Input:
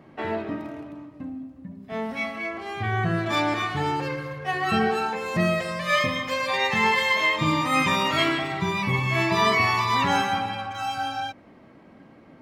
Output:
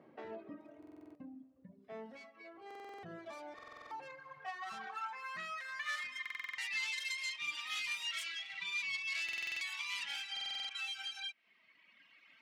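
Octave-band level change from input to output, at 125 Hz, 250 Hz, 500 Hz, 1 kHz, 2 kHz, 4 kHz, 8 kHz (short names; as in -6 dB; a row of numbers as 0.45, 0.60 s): under -35 dB, -27.5 dB, -25.5 dB, -23.5 dB, -14.5 dB, -11.5 dB, -10.0 dB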